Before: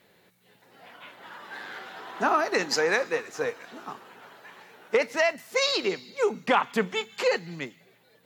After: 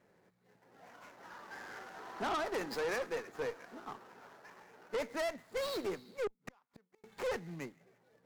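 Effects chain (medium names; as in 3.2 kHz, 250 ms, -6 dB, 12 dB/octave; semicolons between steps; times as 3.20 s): median filter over 15 samples; 6.27–7.04 s: inverted gate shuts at -27 dBFS, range -41 dB; valve stage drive 27 dB, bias 0.35; trim -4.5 dB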